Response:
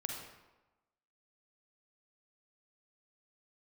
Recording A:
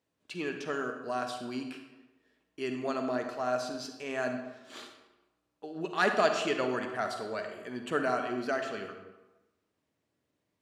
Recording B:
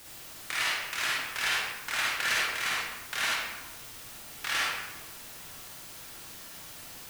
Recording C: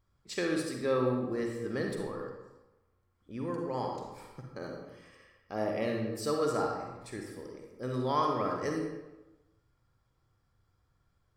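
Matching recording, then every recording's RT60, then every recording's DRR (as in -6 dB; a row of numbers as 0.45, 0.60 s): C; 1.1, 1.1, 1.1 s; 5.0, -6.0, 0.5 dB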